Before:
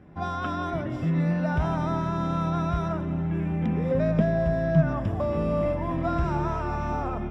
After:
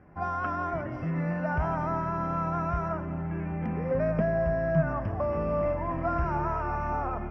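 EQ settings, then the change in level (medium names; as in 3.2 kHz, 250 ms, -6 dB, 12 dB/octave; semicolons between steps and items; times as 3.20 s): boxcar filter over 12 samples; peaking EQ 250 Hz -6 dB 2.5 oct; bass shelf 450 Hz -5.5 dB; +4.0 dB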